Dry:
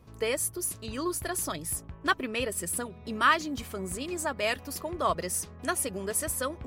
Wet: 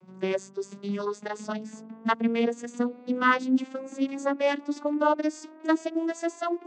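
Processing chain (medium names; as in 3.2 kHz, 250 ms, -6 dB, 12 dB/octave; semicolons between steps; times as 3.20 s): vocoder on a note that slides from F#3, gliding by +11 st; trim +5 dB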